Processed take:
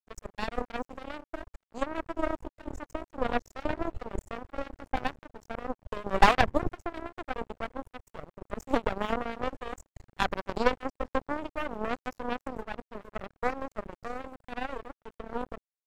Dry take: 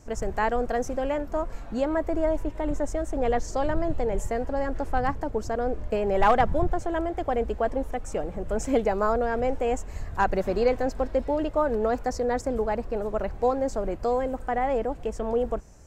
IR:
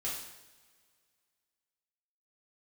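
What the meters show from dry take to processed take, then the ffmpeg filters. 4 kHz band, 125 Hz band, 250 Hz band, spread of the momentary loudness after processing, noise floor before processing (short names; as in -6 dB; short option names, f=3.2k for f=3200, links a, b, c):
+4.0 dB, -7.5 dB, -7.0 dB, 14 LU, -39 dBFS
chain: -af "aeval=exprs='0.266*(cos(1*acos(clip(val(0)/0.266,-1,1)))-cos(1*PI/2))+0.106*(cos(2*acos(clip(val(0)/0.266,-1,1)))-cos(2*PI/2))+0.0841*(cos(3*acos(clip(val(0)/0.266,-1,1)))-cos(3*PI/2))':c=same,aeval=exprs='sgn(val(0))*max(abs(val(0))-0.00355,0)':c=same"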